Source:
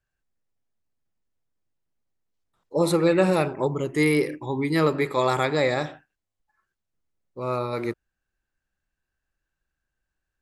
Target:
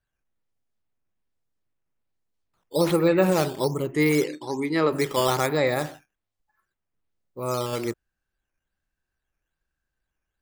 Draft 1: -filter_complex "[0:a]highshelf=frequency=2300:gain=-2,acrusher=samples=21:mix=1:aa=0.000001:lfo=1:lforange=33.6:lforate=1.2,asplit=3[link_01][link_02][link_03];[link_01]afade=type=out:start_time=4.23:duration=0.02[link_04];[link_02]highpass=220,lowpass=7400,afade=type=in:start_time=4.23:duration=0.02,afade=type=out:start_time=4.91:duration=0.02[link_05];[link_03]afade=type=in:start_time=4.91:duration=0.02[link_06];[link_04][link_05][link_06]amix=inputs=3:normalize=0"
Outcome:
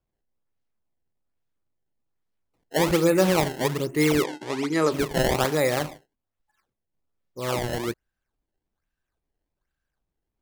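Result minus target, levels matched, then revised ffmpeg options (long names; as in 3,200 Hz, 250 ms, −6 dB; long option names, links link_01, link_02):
sample-and-hold swept by an LFO: distortion +10 dB
-filter_complex "[0:a]highshelf=frequency=2300:gain=-2,acrusher=samples=6:mix=1:aa=0.000001:lfo=1:lforange=9.6:lforate=1.2,asplit=3[link_01][link_02][link_03];[link_01]afade=type=out:start_time=4.23:duration=0.02[link_04];[link_02]highpass=220,lowpass=7400,afade=type=in:start_time=4.23:duration=0.02,afade=type=out:start_time=4.91:duration=0.02[link_05];[link_03]afade=type=in:start_time=4.91:duration=0.02[link_06];[link_04][link_05][link_06]amix=inputs=3:normalize=0"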